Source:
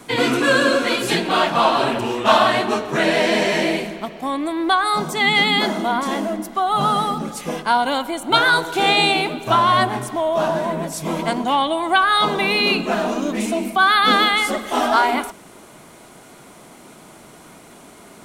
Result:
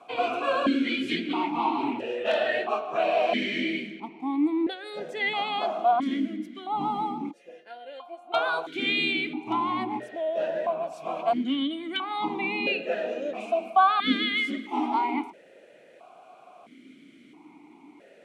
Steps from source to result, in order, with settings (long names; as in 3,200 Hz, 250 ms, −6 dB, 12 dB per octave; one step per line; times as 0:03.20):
0:04.70–0:04.97: gain on a spectral selection 580–2,100 Hz −8 dB
0:07.31–0:08.34: tuned comb filter 350 Hz, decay 0.21 s, harmonics all, mix 90%
in parallel at −7 dB: wrap-around overflow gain 3 dB
on the sum: formant filter that steps through the vowels 1.5 Hz